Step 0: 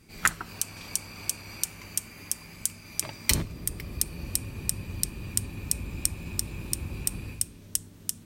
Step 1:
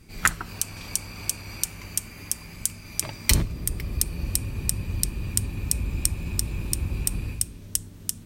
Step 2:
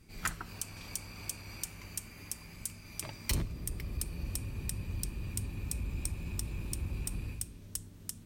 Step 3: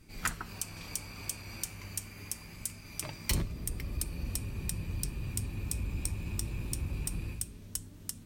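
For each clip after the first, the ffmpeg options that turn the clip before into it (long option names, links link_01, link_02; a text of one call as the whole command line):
ffmpeg -i in.wav -af "lowshelf=frequency=80:gain=10.5,volume=2.5dB" out.wav
ffmpeg -i in.wav -af "asoftclip=type=tanh:threshold=-16dB,volume=-8dB" out.wav
ffmpeg -i in.wav -af "flanger=delay=3.1:depth=7.4:regen=77:speed=0.25:shape=triangular,volume=6.5dB" out.wav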